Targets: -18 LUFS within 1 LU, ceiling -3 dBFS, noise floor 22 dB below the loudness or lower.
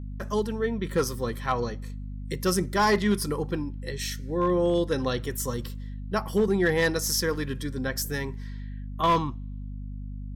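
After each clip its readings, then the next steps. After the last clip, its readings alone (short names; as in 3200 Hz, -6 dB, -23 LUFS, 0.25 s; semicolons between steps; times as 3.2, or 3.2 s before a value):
clipped 0.4%; flat tops at -16.0 dBFS; hum 50 Hz; harmonics up to 250 Hz; hum level -33 dBFS; loudness -27.0 LUFS; peak -16.0 dBFS; loudness target -18.0 LUFS
-> clip repair -16 dBFS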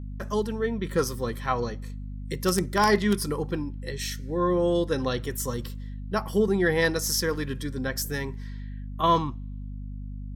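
clipped 0.0%; hum 50 Hz; harmonics up to 250 Hz; hum level -33 dBFS
-> de-hum 50 Hz, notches 5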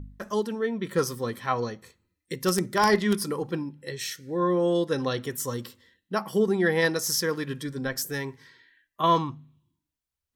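hum none; loudness -27.0 LUFS; peak -7.5 dBFS; loudness target -18.0 LUFS
-> gain +9 dB; limiter -3 dBFS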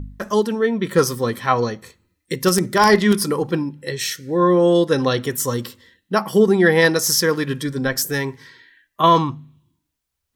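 loudness -18.5 LUFS; peak -3.0 dBFS; noise floor -76 dBFS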